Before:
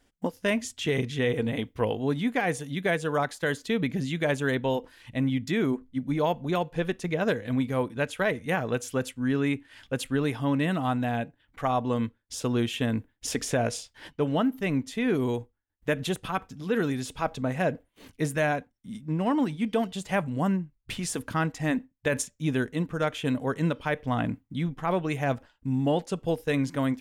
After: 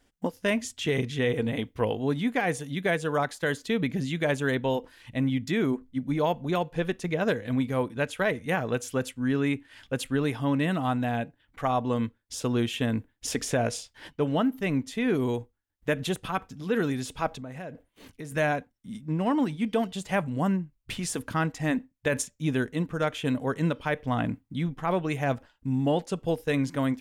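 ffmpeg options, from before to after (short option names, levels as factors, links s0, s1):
-filter_complex "[0:a]asettb=1/sr,asplit=3[s0][s1][s2];[s0]atrim=end=17.274[s3];[s1]atrim=start=17.27:end=18.32,asetpts=PTS-STARTPTS,afade=t=in:d=0.004:c=qsin,afade=t=out:st=1.046:d=0.004:c=qsin,acompressor=threshold=0.0141:ratio=4:attack=3.2:release=140:knee=1:detection=peak[s4];[s2]atrim=start=18.316[s5];[s3][s4]acrossfade=d=0.004:c1=hsin:c2=qsin[s6];[s6][s5]acrossfade=d=0.004:c1=qsin:c2=hsin"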